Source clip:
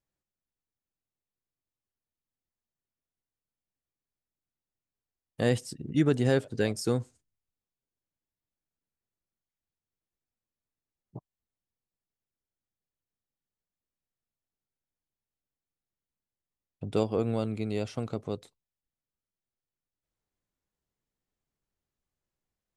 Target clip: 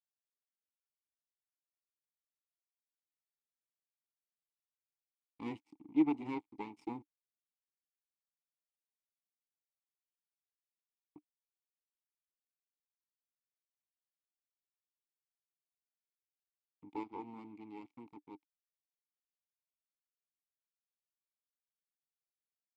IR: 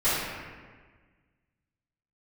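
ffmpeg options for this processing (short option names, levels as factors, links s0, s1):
-filter_complex "[0:a]aeval=exprs='sgn(val(0))*max(abs(val(0))-0.0112,0)':c=same,aeval=exprs='0.237*(cos(1*acos(clip(val(0)/0.237,-1,1)))-cos(1*PI/2))+0.0841*(cos(4*acos(clip(val(0)/0.237,-1,1)))-cos(4*PI/2))':c=same,asplit=3[s0][s1][s2];[s0]bandpass=f=300:t=q:w=8,volume=1[s3];[s1]bandpass=f=870:t=q:w=8,volume=0.501[s4];[s2]bandpass=f=2240:t=q:w=8,volume=0.355[s5];[s3][s4][s5]amix=inputs=3:normalize=0,volume=1.12"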